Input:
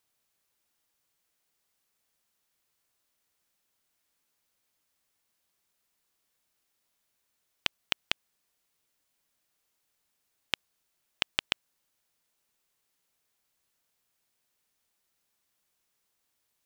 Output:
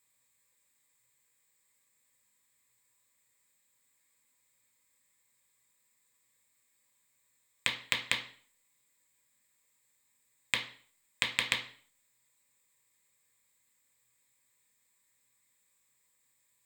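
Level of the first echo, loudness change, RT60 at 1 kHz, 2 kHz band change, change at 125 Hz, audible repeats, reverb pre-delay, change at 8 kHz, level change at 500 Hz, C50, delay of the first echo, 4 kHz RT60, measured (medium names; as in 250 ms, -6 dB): no echo, +1.5 dB, 0.45 s, +4.0 dB, +3.0 dB, no echo, 3 ms, +6.5 dB, -0.5 dB, 10.5 dB, no echo, 0.45 s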